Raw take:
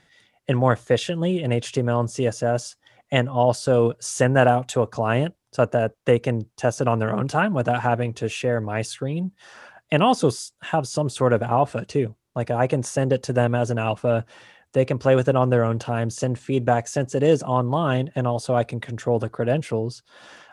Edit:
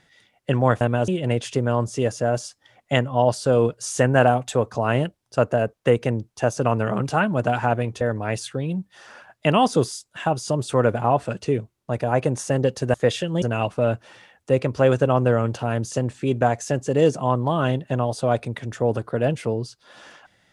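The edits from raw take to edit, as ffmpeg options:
-filter_complex "[0:a]asplit=6[s0][s1][s2][s3][s4][s5];[s0]atrim=end=0.812[s6];[s1]atrim=start=13.408:end=13.682[s7];[s2]atrim=start=1.288:end=8.222[s8];[s3]atrim=start=8.478:end=13.412[s9];[s4]atrim=start=0.808:end=1.292[s10];[s5]atrim=start=13.678[s11];[s6][s7]acrossfade=d=0.004:c1=hsin:c2=hsin[s12];[s12][s8]acrossfade=d=0.004:c1=hsin:c2=hsin[s13];[s13][s9]acrossfade=d=0.004:c1=hsin:c2=hsin[s14];[s14][s10]acrossfade=d=0.004:c1=hsin:c2=hsin[s15];[s15][s11]acrossfade=d=0.004:c1=hsin:c2=hsin"

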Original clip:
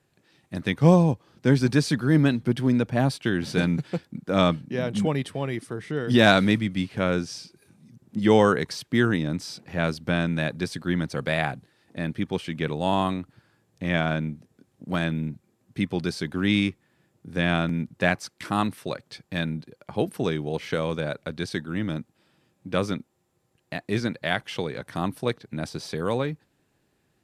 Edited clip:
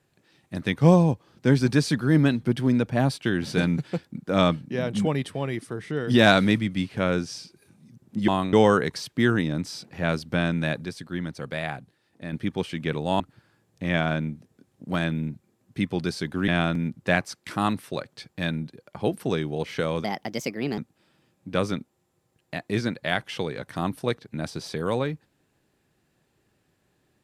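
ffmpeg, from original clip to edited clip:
-filter_complex "[0:a]asplit=9[s0][s1][s2][s3][s4][s5][s6][s7][s8];[s0]atrim=end=8.282[s9];[s1]atrim=start=12.948:end=13.202[s10];[s2]atrim=start=8.278:end=10.602[s11];[s3]atrim=start=10.598:end=12.082,asetpts=PTS-STARTPTS,volume=0.531[s12];[s4]atrim=start=12.078:end=12.952[s13];[s5]atrim=start=13.198:end=16.482[s14];[s6]atrim=start=17.418:end=20.984[s15];[s7]atrim=start=20.98:end=21.97,asetpts=PTS-STARTPTS,asetrate=59094,aresample=44100,atrim=end_sample=32581,asetpts=PTS-STARTPTS[s16];[s8]atrim=start=21.966[s17];[s9][s10]acrossfade=d=0.004:c1=hsin:c2=hsin[s18];[s18][s11]acrossfade=d=0.004:c1=hsin:c2=hsin[s19];[s19][s12]acrossfade=d=0.004:c1=hsin:c2=hsin[s20];[s20][s13]acrossfade=d=0.004:c1=hsin:c2=hsin[s21];[s21][s14]acrossfade=d=0.004:c1=hsin:c2=hsin[s22];[s22][s15]acrossfade=d=0.004:c1=hsin:c2=hsin[s23];[s23][s16]acrossfade=d=0.004:c1=hsin:c2=hsin[s24];[s24][s17]acrossfade=d=0.004:c1=hsin:c2=hsin"

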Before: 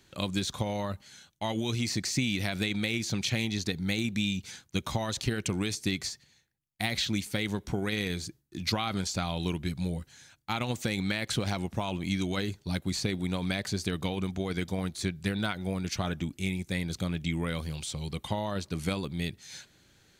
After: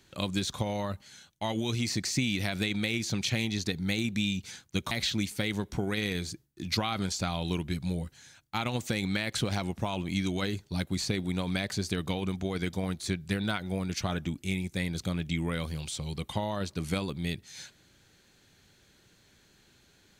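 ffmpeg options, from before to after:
-filter_complex "[0:a]asplit=2[s0][s1];[s0]atrim=end=4.912[s2];[s1]atrim=start=6.858[s3];[s2][s3]acrossfade=d=0.004:c1=hsin:c2=hsin"

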